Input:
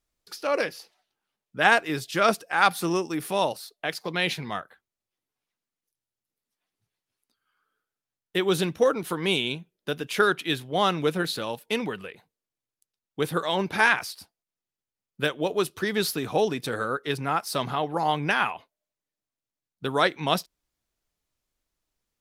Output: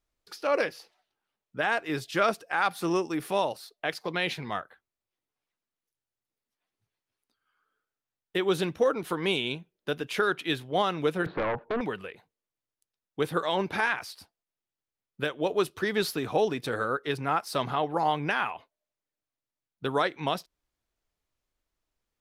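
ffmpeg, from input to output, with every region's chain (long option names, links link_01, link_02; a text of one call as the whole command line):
ffmpeg -i in.wav -filter_complex "[0:a]asettb=1/sr,asplit=3[link_01][link_02][link_03];[link_01]atrim=end=11.264[link_04];[link_02]atrim=start=11.26:end=11.81,asetpts=PTS-STARTPTS,afade=type=in:duration=0.004:curve=qsin,afade=type=out:start_time=0.546:duration=0.004:curve=qsin,lowpass=frequency=1400:width=0.5412,lowpass=frequency=1400:width=1.3066,acompressor=threshold=-29dB:ratio=10:attack=3.2:release=140:knee=1:detection=peak,aeval=exprs='0.0668*sin(PI/2*2.82*val(0)/0.0668)':channel_layout=same[link_05];[link_03]atrim=start=11.806[link_06];[link_04][link_05]acrossfade=duration=0.004:curve1=hsin:curve2=qsin[link_07];[link_07][link_06]acrossfade=duration=0.004:curve1=qsin:curve2=hsin,equalizer=frequency=180:width=1.3:gain=-3.5,alimiter=limit=-13.5dB:level=0:latency=1:release=224,highshelf=frequency=4300:gain=-7.5" out.wav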